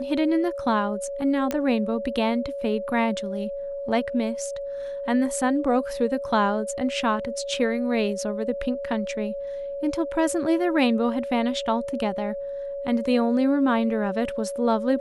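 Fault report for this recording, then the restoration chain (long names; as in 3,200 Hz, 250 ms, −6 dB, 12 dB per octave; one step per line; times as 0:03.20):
whistle 560 Hz −29 dBFS
0:01.51: click −12 dBFS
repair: click removal
notch filter 560 Hz, Q 30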